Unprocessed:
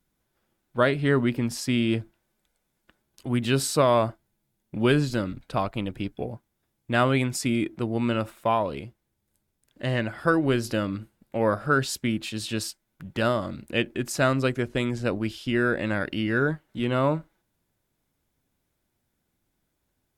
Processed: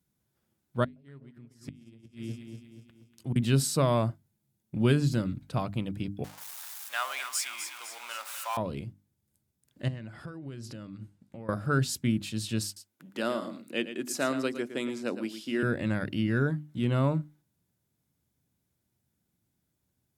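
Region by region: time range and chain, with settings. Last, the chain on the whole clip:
0.84–3.36 echo with dull and thin repeats by turns 0.12 s, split 950 Hz, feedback 68%, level -5 dB + flipped gate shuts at -18 dBFS, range -27 dB + transient shaper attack -2 dB, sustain -8 dB
6.24–8.57 zero-crossing step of -31.5 dBFS + HPF 870 Hz 24 dB/oct + split-band echo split 900 Hz, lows 81 ms, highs 0.253 s, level -8 dB
9.88–11.49 LPF 8800 Hz + compressor, threshold -37 dBFS
12.65–15.63 HPF 250 Hz 24 dB/oct + echo 0.113 s -11 dB
whole clip: HPF 100 Hz; tone controls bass +13 dB, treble +6 dB; notches 50/100/150/200/250/300 Hz; gain -7.5 dB

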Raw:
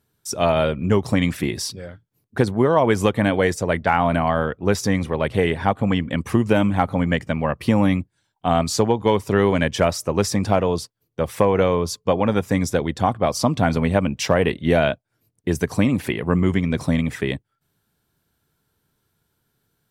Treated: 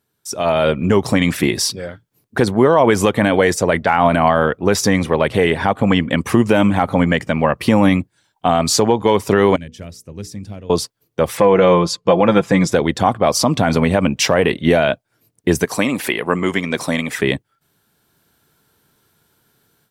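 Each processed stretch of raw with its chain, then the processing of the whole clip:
9.56–10.7 passive tone stack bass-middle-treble 10-0-1 + notches 60/120/180/240/300/360/420/480 Hz
11.37–12.72 air absorption 60 m + notch 5800 Hz, Q 16 + comb 5.9 ms, depth 59%
15.65–17.19 HPF 490 Hz 6 dB/oct + high shelf 8400 Hz +4 dB
whole clip: low shelf 120 Hz -11 dB; limiter -11 dBFS; AGC gain up to 11.5 dB

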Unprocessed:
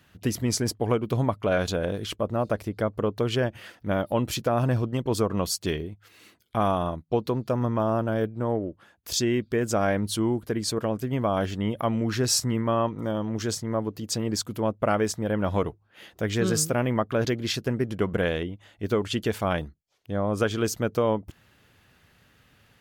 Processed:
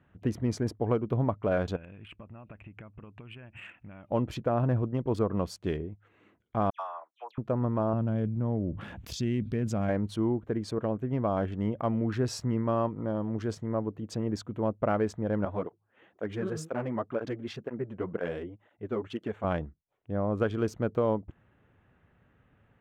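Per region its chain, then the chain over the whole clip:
1.76–4.09 bell 470 Hz -11 dB 1.1 oct + compressor 16:1, threshold -39 dBFS + synth low-pass 2600 Hz, resonance Q 8.9
6.7–7.38 HPF 860 Hz 24 dB/oct + dispersion lows, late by 95 ms, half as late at 2900 Hz
7.93–9.89 band shelf 740 Hz -10 dB 2.9 oct + fast leveller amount 70%
15.45–19.44 HPF 210 Hz 6 dB/oct + tape flanging out of phase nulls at 2 Hz, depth 7.1 ms
whole clip: Wiener smoothing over 9 samples; LPF 1300 Hz 6 dB/oct; gain -2.5 dB

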